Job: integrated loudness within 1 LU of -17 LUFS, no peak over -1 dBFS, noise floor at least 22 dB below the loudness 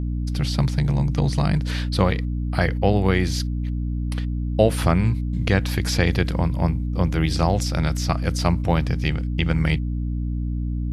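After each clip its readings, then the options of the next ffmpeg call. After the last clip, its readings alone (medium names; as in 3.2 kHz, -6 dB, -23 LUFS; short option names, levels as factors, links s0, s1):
hum 60 Hz; highest harmonic 300 Hz; hum level -22 dBFS; loudness -22.5 LUFS; peak level -3.0 dBFS; loudness target -17.0 LUFS
-> -af "bandreject=f=60:t=h:w=6,bandreject=f=120:t=h:w=6,bandreject=f=180:t=h:w=6,bandreject=f=240:t=h:w=6,bandreject=f=300:t=h:w=6"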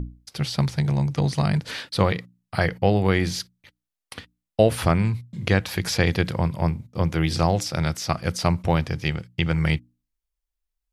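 hum not found; loudness -24.0 LUFS; peak level -4.0 dBFS; loudness target -17.0 LUFS
-> -af "volume=2.24,alimiter=limit=0.891:level=0:latency=1"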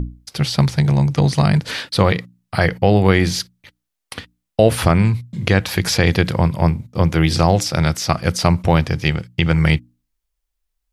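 loudness -17.5 LUFS; peak level -1.0 dBFS; noise floor -78 dBFS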